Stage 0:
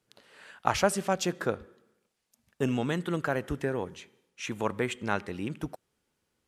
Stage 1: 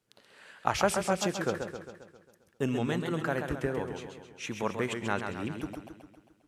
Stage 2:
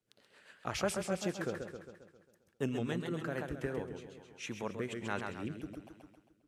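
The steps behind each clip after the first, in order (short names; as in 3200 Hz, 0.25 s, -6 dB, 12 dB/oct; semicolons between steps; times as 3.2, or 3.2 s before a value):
warbling echo 0.134 s, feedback 56%, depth 116 cents, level -6.5 dB; gain -2 dB
rotary speaker horn 7.5 Hz, later 1.2 Hz, at 2.91; gain -4 dB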